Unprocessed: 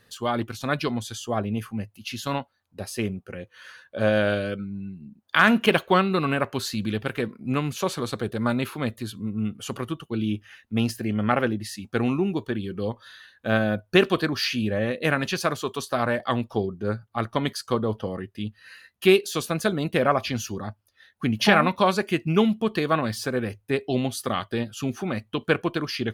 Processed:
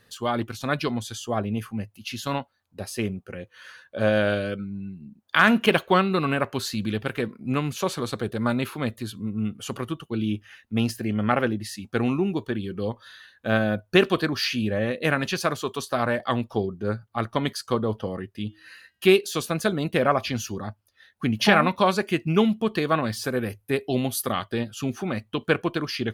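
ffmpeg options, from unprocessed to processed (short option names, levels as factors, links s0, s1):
-filter_complex "[0:a]asplit=3[s0][s1][s2];[s0]afade=t=out:st=18.47:d=0.02[s3];[s1]bandreject=f=318.3:t=h:w=4,bandreject=f=636.6:t=h:w=4,bandreject=f=954.9:t=h:w=4,bandreject=f=1273.2:t=h:w=4,bandreject=f=1591.5:t=h:w=4,bandreject=f=1909.8:t=h:w=4,bandreject=f=2228.1:t=h:w=4,bandreject=f=2546.4:t=h:w=4,bandreject=f=2864.7:t=h:w=4,bandreject=f=3183:t=h:w=4,bandreject=f=3501.3:t=h:w=4,bandreject=f=3819.6:t=h:w=4,bandreject=f=4137.9:t=h:w=4,bandreject=f=4456.2:t=h:w=4,bandreject=f=4774.5:t=h:w=4,bandreject=f=5092.8:t=h:w=4,bandreject=f=5411.1:t=h:w=4,bandreject=f=5729.4:t=h:w=4,bandreject=f=6047.7:t=h:w=4,bandreject=f=6366:t=h:w=4,bandreject=f=6684.3:t=h:w=4,bandreject=f=7002.6:t=h:w=4,bandreject=f=7320.9:t=h:w=4,bandreject=f=7639.2:t=h:w=4,bandreject=f=7957.5:t=h:w=4,bandreject=f=8275.8:t=h:w=4,bandreject=f=8594.1:t=h:w=4,bandreject=f=8912.4:t=h:w=4,bandreject=f=9230.7:t=h:w=4,afade=t=in:st=18.47:d=0.02,afade=t=out:st=19.04:d=0.02[s4];[s2]afade=t=in:st=19.04:d=0.02[s5];[s3][s4][s5]amix=inputs=3:normalize=0,asettb=1/sr,asplit=3[s6][s7][s8];[s6]atrim=end=23.244[s9];[s7]atrim=start=23.24:end=24.32,asetpts=PTS-STARTPTS,afade=t=in:d=0.004:c=qsin,afade=t=out:st=1.076:d=0.004:c=qsin,equalizer=f=12000:t=o:w=0.48:g=13[s10];[s8]atrim=start=24.316[s11];[s9][s10]acrossfade=d=0.004:c1=hsin:c2=qsin[s12];[s12][s11]acrossfade=d=0.004:c1=qsin:c2=hsin"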